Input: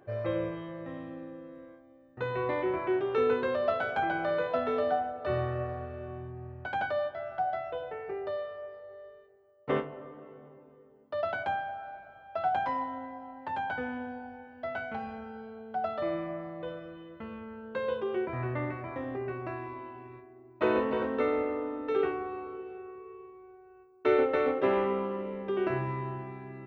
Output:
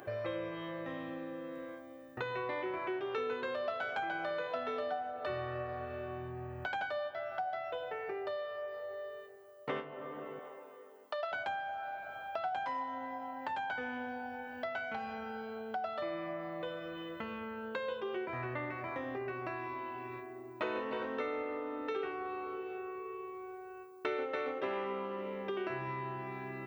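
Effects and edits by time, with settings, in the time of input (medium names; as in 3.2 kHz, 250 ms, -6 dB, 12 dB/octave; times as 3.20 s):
10.39–11.32 s: high-pass 480 Hz
whole clip: tilt EQ +2.5 dB/octave; compression 3:1, threshold -50 dBFS; trim +9.5 dB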